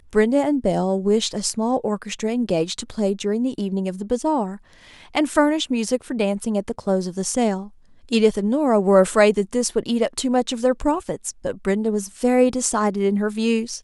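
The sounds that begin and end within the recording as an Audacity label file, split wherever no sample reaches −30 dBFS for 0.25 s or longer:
5.150000	7.640000	sound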